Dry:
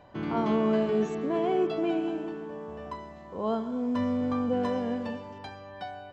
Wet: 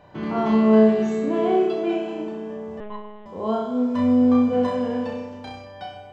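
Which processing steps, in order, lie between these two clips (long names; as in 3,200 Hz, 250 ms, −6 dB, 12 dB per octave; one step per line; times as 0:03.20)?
0:01.56–0:02.20: low-shelf EQ 170 Hz −8.5 dB
on a send: flutter between parallel walls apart 5.5 metres, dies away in 0.76 s
0:02.80–0:03.26: on the sum: one-pitch LPC vocoder at 8 kHz 210 Hz
level +2 dB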